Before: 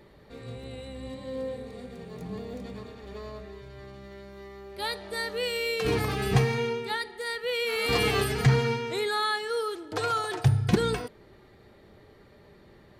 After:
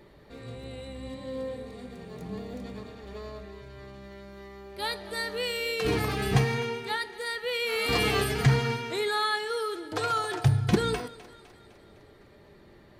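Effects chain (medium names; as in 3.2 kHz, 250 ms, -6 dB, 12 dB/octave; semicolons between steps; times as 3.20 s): thinning echo 254 ms, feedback 58%, level -18 dB; on a send at -14.5 dB: reverberation RT60 0.55 s, pre-delay 3 ms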